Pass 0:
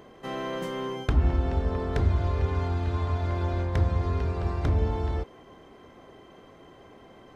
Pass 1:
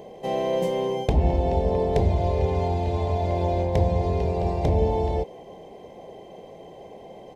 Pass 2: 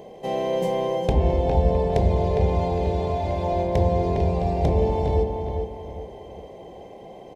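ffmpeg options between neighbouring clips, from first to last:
ffmpeg -i in.wav -af "firequalizer=gain_entry='entry(110,0);entry(180,8);entry(260,-1);entry(480,11);entry(830,9);entry(1300,-16);entry(2100,1);entry(3700,2);entry(7400,4)':delay=0.05:min_phase=1,volume=1dB" out.wav
ffmpeg -i in.wav -filter_complex "[0:a]asplit=2[link_01][link_02];[link_02]adelay=407,lowpass=frequency=2400:poles=1,volume=-4.5dB,asplit=2[link_03][link_04];[link_04]adelay=407,lowpass=frequency=2400:poles=1,volume=0.37,asplit=2[link_05][link_06];[link_06]adelay=407,lowpass=frequency=2400:poles=1,volume=0.37,asplit=2[link_07][link_08];[link_08]adelay=407,lowpass=frequency=2400:poles=1,volume=0.37,asplit=2[link_09][link_10];[link_10]adelay=407,lowpass=frequency=2400:poles=1,volume=0.37[link_11];[link_01][link_03][link_05][link_07][link_09][link_11]amix=inputs=6:normalize=0" out.wav

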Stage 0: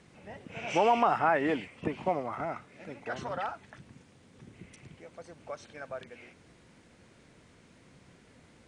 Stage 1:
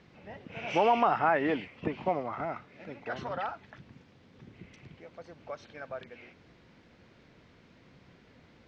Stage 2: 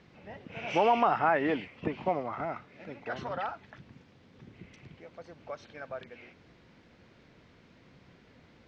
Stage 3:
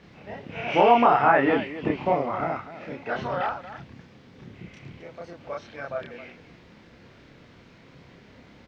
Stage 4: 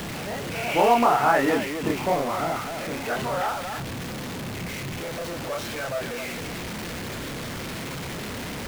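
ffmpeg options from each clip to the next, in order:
ffmpeg -i in.wav -af "lowpass=frequency=5100:width=0.5412,lowpass=frequency=5100:width=1.3066" out.wav
ffmpeg -i in.wav -af anull out.wav
ffmpeg -i in.wav -filter_complex "[0:a]acrossover=split=3800[link_01][link_02];[link_02]acompressor=threshold=-60dB:ratio=4:attack=1:release=60[link_03];[link_01][link_03]amix=inputs=2:normalize=0,aecho=1:1:29.15|265.3:1|0.251,volume=4.5dB" out.wav
ffmpeg -i in.wav -filter_complex "[0:a]aeval=exprs='val(0)+0.5*0.0531*sgn(val(0))':channel_layout=same,acrossover=split=620[link_01][link_02];[link_01]acrusher=bits=3:mode=log:mix=0:aa=0.000001[link_03];[link_03][link_02]amix=inputs=2:normalize=0,volume=-2.5dB" out.wav

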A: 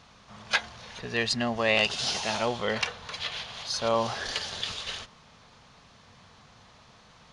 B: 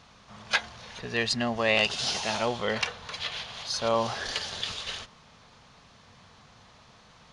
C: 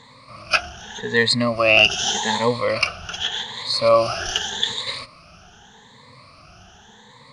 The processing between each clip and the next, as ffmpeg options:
ffmpeg -i in.wav -af anull out.wav
ffmpeg -i in.wav -af "afftfilt=real='re*pow(10,20/40*sin(2*PI*(1*log(max(b,1)*sr/1024/100)/log(2)-(0.84)*(pts-256)/sr)))':imag='im*pow(10,20/40*sin(2*PI*(1*log(max(b,1)*sr/1024/100)/log(2)-(0.84)*(pts-256)/sr)))':win_size=1024:overlap=0.75,volume=3.5dB" out.wav

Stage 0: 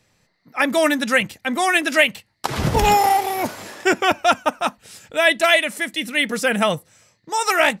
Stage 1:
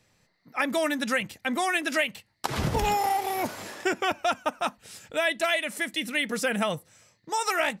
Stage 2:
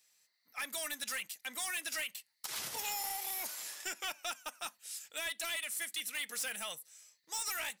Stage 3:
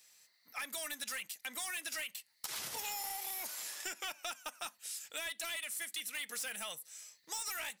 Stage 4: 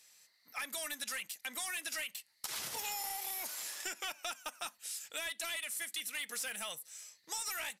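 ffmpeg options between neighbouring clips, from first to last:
ffmpeg -i in.wav -af "acompressor=threshold=-21dB:ratio=2.5,volume=-3.5dB" out.wav
ffmpeg -i in.wav -filter_complex "[0:a]aderivative,asplit=2[link_01][link_02];[link_02]alimiter=level_in=3dB:limit=-24dB:level=0:latency=1:release=55,volume=-3dB,volume=-1dB[link_03];[link_01][link_03]amix=inputs=2:normalize=0,asoftclip=type=hard:threshold=-29.5dB,volume=-3.5dB" out.wav
ffmpeg -i in.wav -af "acompressor=threshold=-50dB:ratio=2.5,volume=7dB" out.wav
ffmpeg -i in.wav -af "aresample=32000,aresample=44100,volume=1dB" out.wav

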